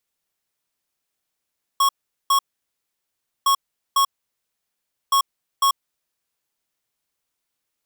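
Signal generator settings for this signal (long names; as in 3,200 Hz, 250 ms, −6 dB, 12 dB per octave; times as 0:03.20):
beeps in groups square 1,100 Hz, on 0.09 s, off 0.41 s, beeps 2, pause 1.07 s, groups 3, −16.5 dBFS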